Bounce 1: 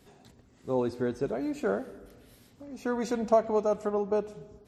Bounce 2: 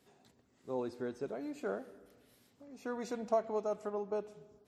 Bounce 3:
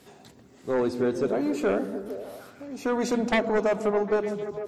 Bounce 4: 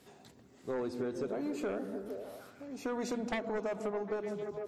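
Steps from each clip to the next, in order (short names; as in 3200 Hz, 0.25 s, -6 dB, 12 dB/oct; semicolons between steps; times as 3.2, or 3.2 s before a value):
HPF 200 Hz 6 dB/oct; gain -8 dB
sine folder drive 11 dB, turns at -19 dBFS; delay with a stepping band-pass 0.151 s, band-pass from 180 Hz, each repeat 0.7 oct, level -3.5 dB
compressor, threshold -26 dBFS, peak gain reduction 7.5 dB; gain -6.5 dB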